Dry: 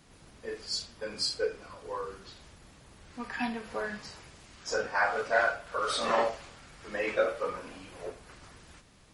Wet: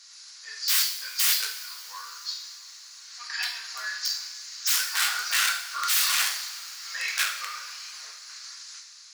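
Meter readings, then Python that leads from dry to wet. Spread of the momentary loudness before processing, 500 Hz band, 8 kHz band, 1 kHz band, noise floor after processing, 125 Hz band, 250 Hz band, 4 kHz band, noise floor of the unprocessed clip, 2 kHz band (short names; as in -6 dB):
22 LU, -27.0 dB, +17.5 dB, -2.5 dB, -48 dBFS, under -25 dB, under -30 dB, +11.5 dB, -57 dBFS, +4.0 dB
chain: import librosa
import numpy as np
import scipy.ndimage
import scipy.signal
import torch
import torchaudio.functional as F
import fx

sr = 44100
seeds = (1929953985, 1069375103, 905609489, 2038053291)

y = fx.band_shelf(x, sr, hz=5300.0, db=15.5, octaves=1.0)
y = (np.mod(10.0 ** (20.5 / 20.0) * y + 1.0, 2.0) - 1.0) / 10.0 ** (20.5 / 20.0)
y = scipy.signal.sosfilt(scipy.signal.butter(4, 1300.0, 'highpass', fs=sr, output='sos'), y)
y = fx.rev_double_slope(y, sr, seeds[0], early_s=0.6, late_s=3.3, knee_db=-17, drr_db=1.0)
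y = fx.doppler_dist(y, sr, depth_ms=0.14)
y = y * 10.0 ** (3.0 / 20.0)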